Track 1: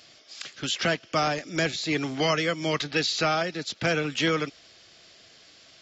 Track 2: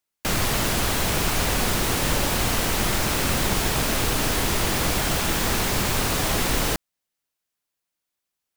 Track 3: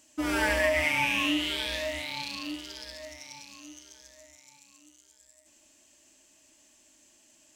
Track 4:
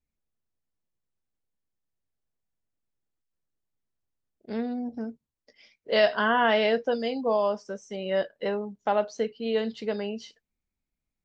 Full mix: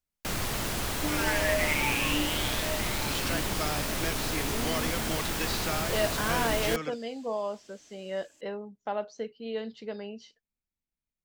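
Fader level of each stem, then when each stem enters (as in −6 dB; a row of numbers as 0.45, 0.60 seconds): −9.5, −8.5, −2.5, −7.5 decibels; 2.45, 0.00, 0.85, 0.00 seconds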